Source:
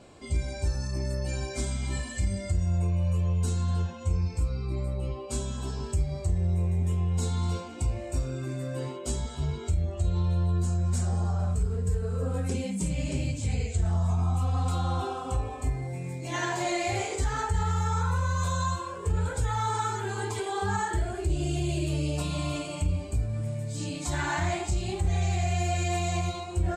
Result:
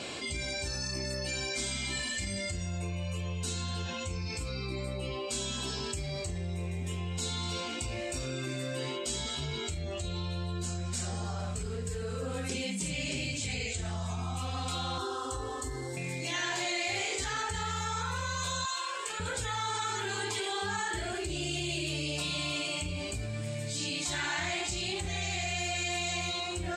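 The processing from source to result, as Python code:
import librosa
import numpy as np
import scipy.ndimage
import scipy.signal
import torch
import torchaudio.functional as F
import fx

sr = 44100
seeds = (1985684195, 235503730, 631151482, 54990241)

y = fx.fixed_phaser(x, sr, hz=660.0, stages=6, at=(14.98, 15.97))
y = fx.highpass(y, sr, hz=840.0, slope=12, at=(18.65, 19.2))
y = fx.weighting(y, sr, curve='D')
y = fx.env_flatten(y, sr, amount_pct=70)
y = y * 10.0 ** (-8.5 / 20.0)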